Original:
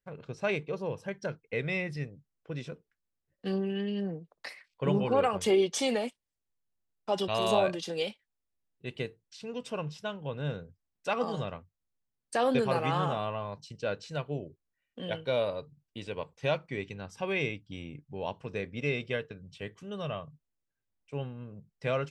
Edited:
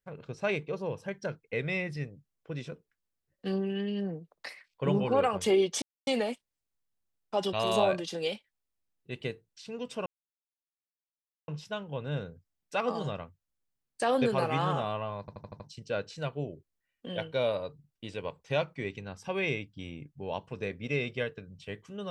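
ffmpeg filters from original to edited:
-filter_complex "[0:a]asplit=8[a][b][c][d][e][f][g][h];[a]atrim=end=5.82,asetpts=PTS-STARTPTS,afade=t=out:st=5.816:d=0.004:c=hsin,apad=pad_dur=0.25[i];[b]atrim=start=5.82:end=9.81,asetpts=PTS-STARTPTS,afade=t=in:d=0.004:c=hsin,afade=t=out:st=3.986:d=0.004:c=hsin,apad=pad_dur=1.42[j];[c]atrim=start=9.81:end=13.612,asetpts=PTS-STARTPTS,afade=t=in:d=0.004:c=hsin[k];[d]atrim=start=13.528:end=13.612[l];[e]atrim=start=13.528:end=13.612[m];[f]atrim=start=13.528:end=13.612[n];[g]atrim=start=13.528:end=13.612[o];[h]atrim=start=13.528[p];[i][j][k]concat=n=3:v=0:a=1[q];[q][l]acrossfade=d=0.004:c1=hsin:c2=hsin[r];[r][m]acrossfade=d=0.004:c1=hsin:c2=hsin[s];[s][n]acrossfade=d=0.004:c1=hsin:c2=hsin[t];[t][o]acrossfade=d=0.004:c1=hsin:c2=hsin[u];[u][p]acrossfade=d=0.004:c1=hsin:c2=hsin"

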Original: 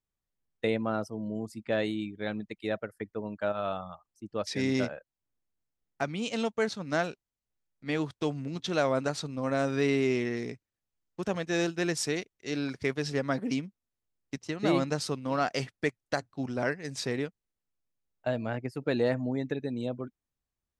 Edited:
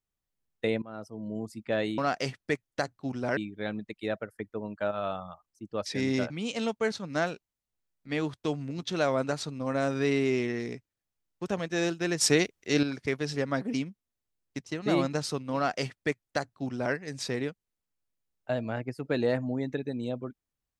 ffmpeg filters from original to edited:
-filter_complex "[0:a]asplit=7[a][b][c][d][e][f][g];[a]atrim=end=0.82,asetpts=PTS-STARTPTS,afade=t=out:st=0.816:d=0.004:c=hsin:silence=0.1[h];[b]atrim=start=0.82:end=1.982,asetpts=PTS-STARTPTS,afade=t=in:d=0.56:silence=0.1[i];[c]atrim=start=15.318:end=16.712[j];[d]atrim=start=1.978:end=4.912[k];[e]atrim=start=6.068:end=11.982[l];[f]atrim=start=11.978:end=12.602,asetpts=PTS-STARTPTS,volume=8dB[m];[g]atrim=start=12.598[n];[h][i]concat=n=2:v=0:a=1[o];[o][j]acrossfade=d=0.004:c1=hsin:c2=hsin[p];[p][k]acrossfade=d=0.004:c1=hsin:c2=hsin[q];[q][l]acrossfade=d=0.004:c1=hsin:c2=hsin[r];[r][m]acrossfade=d=0.004:c1=hsin:c2=hsin[s];[s][n]acrossfade=d=0.004:c1=hsin:c2=hsin"

